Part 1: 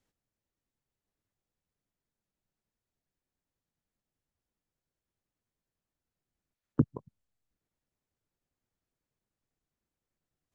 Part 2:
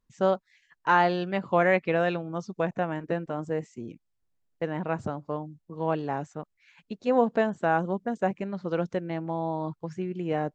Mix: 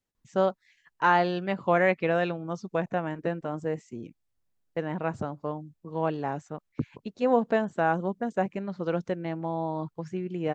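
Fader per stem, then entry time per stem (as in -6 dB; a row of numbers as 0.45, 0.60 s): -5.5, -0.5 dB; 0.00, 0.15 s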